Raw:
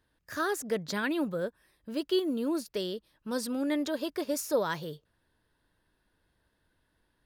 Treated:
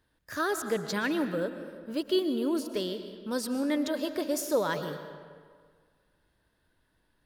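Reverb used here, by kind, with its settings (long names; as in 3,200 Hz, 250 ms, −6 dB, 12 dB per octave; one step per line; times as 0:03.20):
comb and all-pass reverb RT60 1.8 s, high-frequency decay 0.7×, pre-delay 85 ms, DRR 9 dB
level +1 dB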